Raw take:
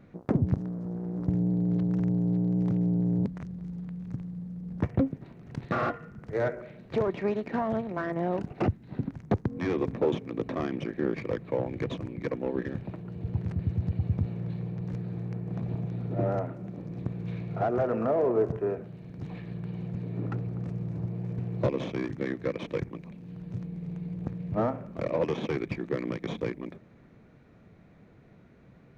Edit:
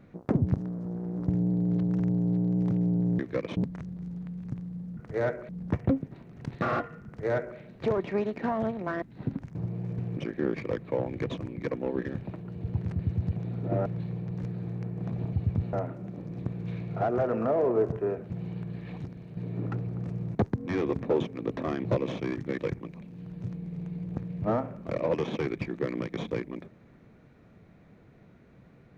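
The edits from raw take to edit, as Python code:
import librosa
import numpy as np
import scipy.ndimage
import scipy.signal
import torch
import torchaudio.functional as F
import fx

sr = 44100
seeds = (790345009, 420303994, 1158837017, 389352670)

y = fx.edit(x, sr, fx.duplicate(start_s=6.16, length_s=0.52, to_s=4.59),
    fx.cut(start_s=8.12, length_s=0.62),
    fx.swap(start_s=9.27, length_s=1.5, other_s=20.95, other_length_s=0.62),
    fx.swap(start_s=13.96, length_s=0.4, other_s=15.83, other_length_s=0.5),
    fx.reverse_span(start_s=18.9, length_s=1.07),
    fx.move(start_s=22.3, length_s=0.38, to_s=3.19), tone=tone)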